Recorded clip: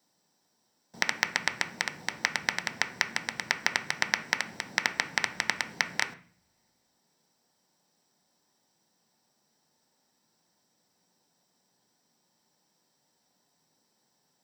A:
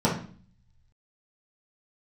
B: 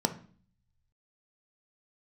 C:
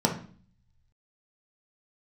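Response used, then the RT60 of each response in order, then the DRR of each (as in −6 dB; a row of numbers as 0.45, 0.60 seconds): B; 0.45, 0.45, 0.45 seconds; −7.0, 7.0, 0.5 decibels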